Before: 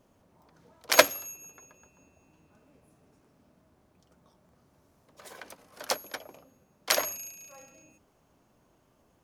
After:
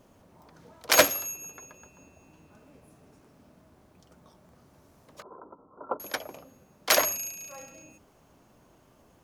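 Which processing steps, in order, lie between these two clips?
0:05.22–0:06.00: Chebyshev low-pass with heavy ripple 1,400 Hz, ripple 9 dB
soft clipping −17 dBFS, distortion −6 dB
level +6.5 dB

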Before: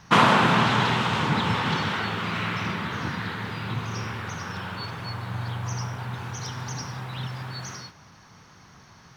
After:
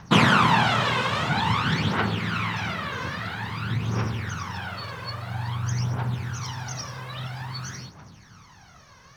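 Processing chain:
phase shifter 0.5 Hz, delay 2 ms, feedback 63%
every ending faded ahead of time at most 190 dB per second
level −1.5 dB

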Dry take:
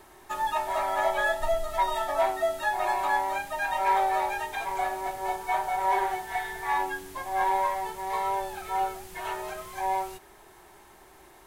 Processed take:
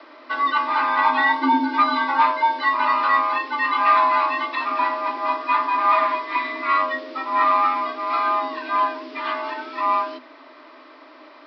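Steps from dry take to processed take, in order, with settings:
Butterworth low-pass 5,000 Hz 96 dB per octave
parametric band 75 Hz +6.5 dB 1.3 octaves
frequency shifter +250 Hz
level +7.5 dB

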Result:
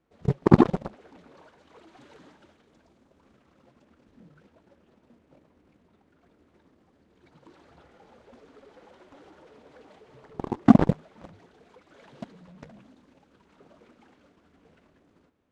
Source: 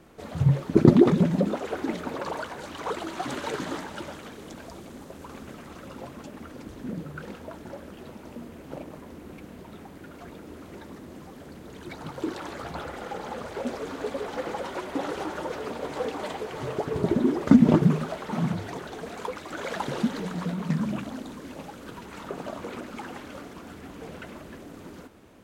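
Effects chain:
dynamic equaliser 1,100 Hz, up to −3 dB, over −45 dBFS, Q 0.94
in parallel at −10 dB: bit reduction 6 bits
on the sum: high-frequency loss of the air 77 metres
phase-vocoder stretch with locked phases 0.61×
harmonic generator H 7 −16 dB, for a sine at −1 dBFS
level +1 dB

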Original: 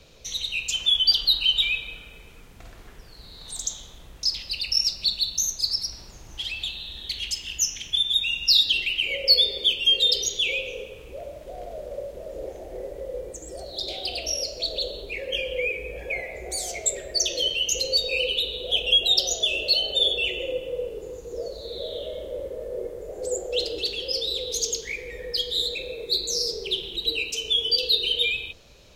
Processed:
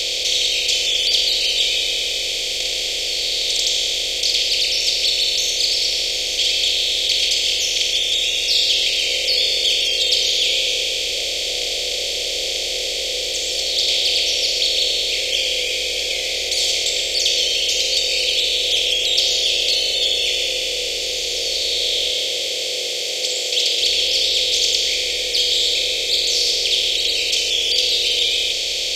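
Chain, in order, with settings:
compressor on every frequency bin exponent 0.2
0:22.12–0:23.80: high-pass filter 120 Hz → 270 Hz 6 dB per octave
level −7.5 dB

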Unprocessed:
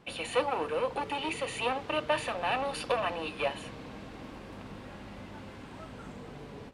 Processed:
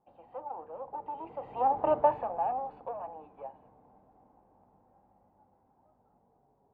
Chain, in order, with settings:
source passing by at 0:01.90, 11 m/s, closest 1.9 metres
low-pass with resonance 810 Hz, resonance Q 5.4

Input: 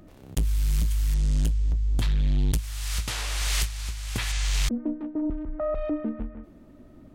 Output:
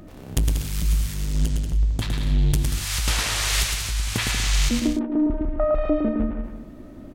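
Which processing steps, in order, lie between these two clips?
downward compressor, threshold −25 dBFS, peak gain reduction 4.5 dB
on a send: bouncing-ball delay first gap 110 ms, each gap 0.7×, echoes 5
on the sum: level +7 dB

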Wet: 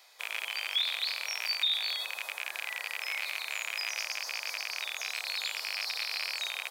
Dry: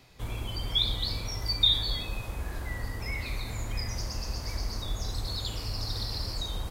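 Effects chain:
loose part that buzzes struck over −35 dBFS, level −17 dBFS
high-pass filter 580 Hz 24 dB per octave
spectral tilt +1.5 dB per octave
notch filter 2,700 Hz, Q 12
brickwall limiter −20 dBFS, peak gain reduction 11 dB

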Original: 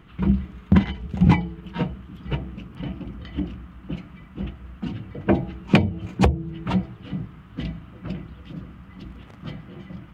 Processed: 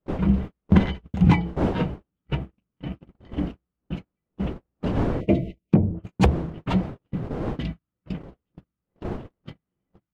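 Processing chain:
wind on the microphone 370 Hz −33 dBFS
0:05.21–0:05.72: time-frequency box erased 690–1,900 Hz
noise gate −29 dBFS, range −44 dB
in parallel at −11 dB: gain into a clipping stage and back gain 21 dB
0:05.61–0:06.04: on the sum: treble cut that deepens with the level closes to 480 Hz, closed at −16.5 dBFS
level −1.5 dB

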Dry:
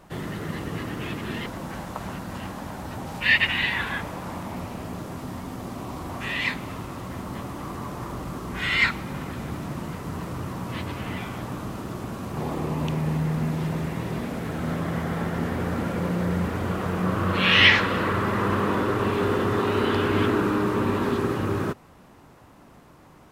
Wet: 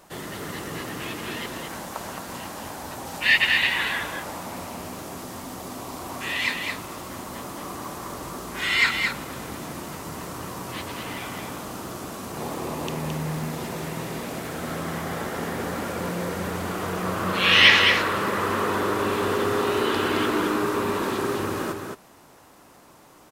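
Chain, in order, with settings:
bass and treble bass −9 dB, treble +8 dB
single-tap delay 218 ms −5 dB

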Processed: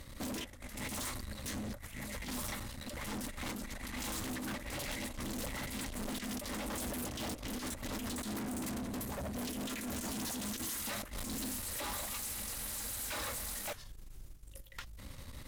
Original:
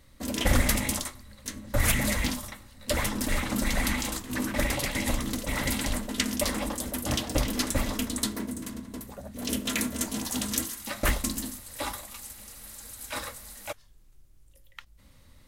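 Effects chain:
compressor whose output falls as the input rises −34 dBFS, ratio −0.5
tube saturation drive 43 dB, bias 0.55
level +5.5 dB

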